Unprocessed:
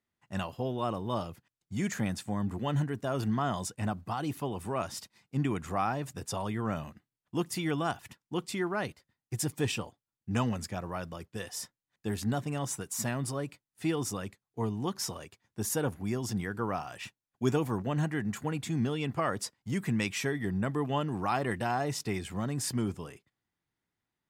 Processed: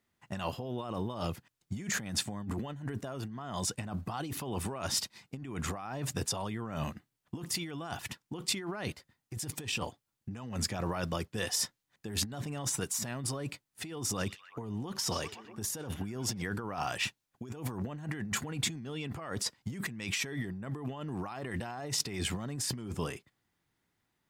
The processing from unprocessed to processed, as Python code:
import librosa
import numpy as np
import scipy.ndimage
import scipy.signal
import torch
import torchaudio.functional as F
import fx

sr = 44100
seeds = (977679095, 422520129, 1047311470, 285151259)

y = fx.echo_stepped(x, sr, ms=127, hz=3500.0, octaves=-0.7, feedback_pct=70, wet_db=-11.5, at=(14.05, 16.42))
y = fx.over_compress(y, sr, threshold_db=-39.0, ratio=-1.0)
y = fx.dynamic_eq(y, sr, hz=4100.0, q=0.77, threshold_db=-52.0, ratio=4.0, max_db=4)
y = F.gain(torch.from_numpy(y), 1.5).numpy()